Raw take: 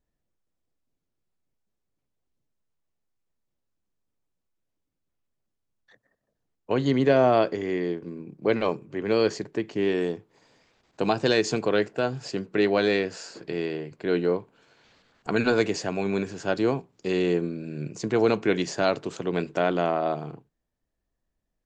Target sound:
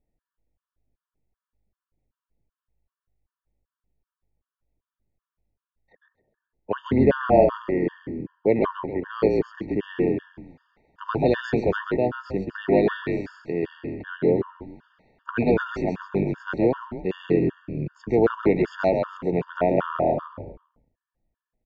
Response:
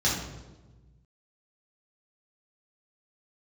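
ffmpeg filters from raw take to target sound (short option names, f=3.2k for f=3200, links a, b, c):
-filter_complex "[0:a]lowpass=1.8k,asplit=5[a][b][c][d][e];[b]adelay=133,afreqshift=-51,volume=-4dB[f];[c]adelay=266,afreqshift=-102,volume=-13.1dB[g];[d]adelay=399,afreqshift=-153,volume=-22.2dB[h];[e]adelay=532,afreqshift=-204,volume=-31.4dB[i];[a][f][g][h][i]amix=inputs=5:normalize=0,afftfilt=real='re*gt(sin(2*PI*2.6*pts/sr)*(1-2*mod(floor(b*sr/1024/910),2)),0)':imag='im*gt(sin(2*PI*2.6*pts/sr)*(1-2*mod(floor(b*sr/1024/910),2)),0)':win_size=1024:overlap=0.75,volume=3.5dB"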